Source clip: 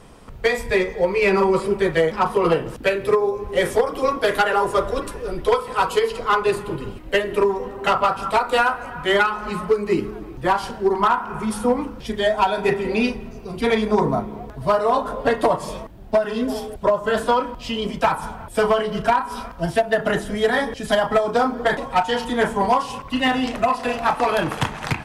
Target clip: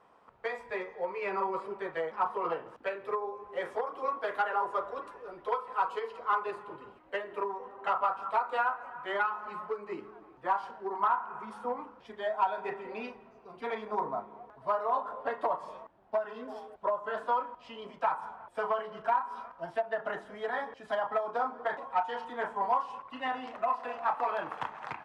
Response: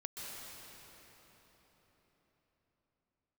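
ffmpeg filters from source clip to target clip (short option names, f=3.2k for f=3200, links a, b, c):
-af "bandpass=f=1k:t=q:w=1.4:csg=0,volume=-8.5dB"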